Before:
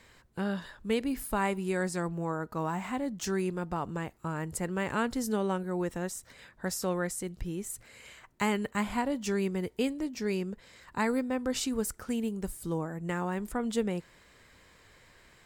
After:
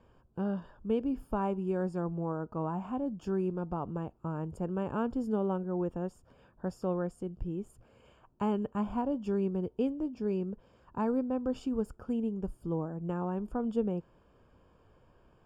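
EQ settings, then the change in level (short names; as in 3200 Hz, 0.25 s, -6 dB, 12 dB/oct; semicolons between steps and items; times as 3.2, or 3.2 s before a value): running mean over 22 samples; 0.0 dB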